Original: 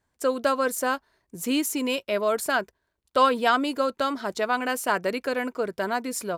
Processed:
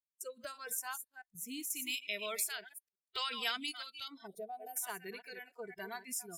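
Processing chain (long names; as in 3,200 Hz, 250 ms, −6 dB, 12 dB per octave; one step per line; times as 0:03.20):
delay that plays each chunk backwards 174 ms, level −10 dB
first-order pre-emphasis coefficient 0.8
noise gate with hold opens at −43 dBFS
noise reduction from a noise print of the clip's start 24 dB
0:01.70–0:04.08: high shelf with overshoot 1,500 Hz +9 dB, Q 1.5
0:04.27–0:04.77: gain on a spectral selection 760–8,400 Hz −29 dB
downward compressor 2 to 1, threshold −42 dBFS, peak gain reduction 12.5 dB
rotating-speaker cabinet horn 0.8 Hz
one half of a high-frequency compander encoder only
level +2 dB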